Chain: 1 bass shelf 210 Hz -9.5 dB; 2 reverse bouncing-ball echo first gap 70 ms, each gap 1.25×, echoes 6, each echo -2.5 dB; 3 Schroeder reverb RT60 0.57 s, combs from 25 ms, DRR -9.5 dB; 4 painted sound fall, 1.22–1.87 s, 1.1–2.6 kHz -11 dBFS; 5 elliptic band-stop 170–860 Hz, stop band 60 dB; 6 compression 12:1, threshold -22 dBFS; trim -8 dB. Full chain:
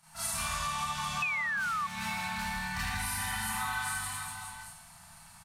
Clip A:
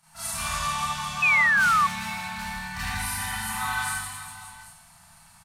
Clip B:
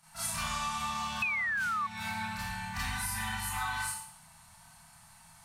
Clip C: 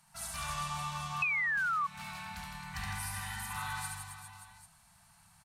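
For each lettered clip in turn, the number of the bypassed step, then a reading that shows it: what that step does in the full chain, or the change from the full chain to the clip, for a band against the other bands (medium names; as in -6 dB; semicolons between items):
6, mean gain reduction 3.5 dB; 2, momentary loudness spread change -9 LU; 3, crest factor change +2.0 dB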